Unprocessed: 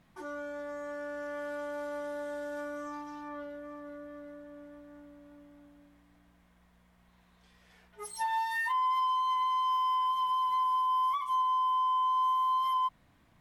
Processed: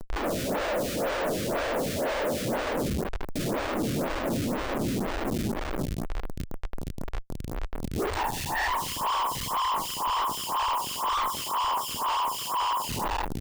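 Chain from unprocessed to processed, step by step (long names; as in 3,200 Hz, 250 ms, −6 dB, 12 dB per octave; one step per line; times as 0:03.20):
0:02.71–0:03.36: noise gate −36 dBFS, range −25 dB
leveller curve on the samples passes 3
0:11.66–0:12.12: high-pass filter 930 Hz 12 dB per octave
on a send: echo with shifted repeats 181 ms, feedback 41%, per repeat −54 Hz, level −11 dB
on the sum: random phases in short frames
in parallel at +1 dB: downward compressor, threshold −36 dBFS, peak gain reduction 14.5 dB
on the sum: spectral tilt −4 dB per octave
comparator with hysteresis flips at −37 dBFS
phaser with staggered stages 2 Hz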